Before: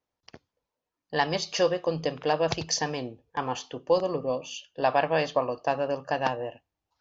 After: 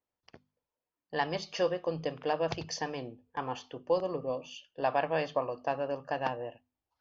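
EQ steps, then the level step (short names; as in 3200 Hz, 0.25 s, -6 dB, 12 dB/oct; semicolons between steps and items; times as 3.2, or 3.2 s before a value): air absorption 110 m; notches 50/100/150/200/250 Hz; notch 3900 Hz, Q 16; -5.0 dB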